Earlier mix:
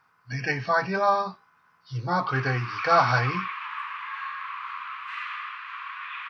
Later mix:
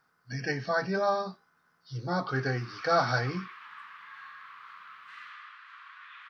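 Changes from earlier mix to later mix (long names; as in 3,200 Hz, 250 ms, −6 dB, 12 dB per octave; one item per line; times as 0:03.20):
background −5.0 dB
master: add graphic EQ with 15 bands 100 Hz −10 dB, 1,000 Hz −11 dB, 2,500 Hz −11 dB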